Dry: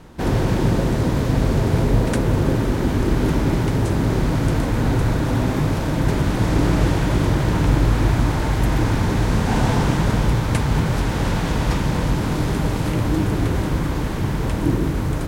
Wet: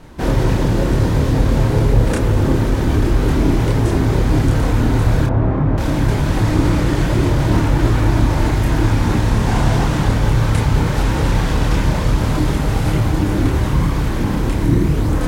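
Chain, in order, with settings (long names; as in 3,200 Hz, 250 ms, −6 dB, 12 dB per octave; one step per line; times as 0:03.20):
0:05.26–0:05.78: low-pass filter 1,300 Hz 12 dB per octave
in parallel at +2.5 dB: brickwall limiter −12.5 dBFS, peak gain reduction 7.5 dB
on the sum: multi-voice chorus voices 6, 0.53 Hz, delay 28 ms, depth 2 ms
level −1 dB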